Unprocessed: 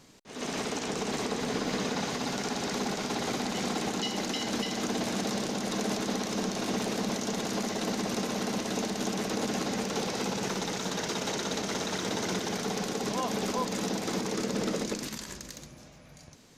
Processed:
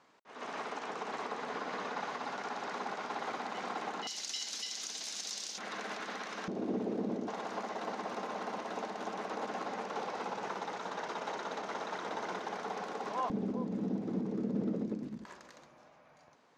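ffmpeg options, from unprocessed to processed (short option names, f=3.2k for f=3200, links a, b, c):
-af "asetnsamples=n=441:p=0,asendcmd='4.07 bandpass f 5600;5.58 bandpass f 1500;6.48 bandpass f 340;7.28 bandpass f 970;13.3 bandpass f 220;15.25 bandpass f 970',bandpass=f=1.1k:t=q:w=1.3:csg=0"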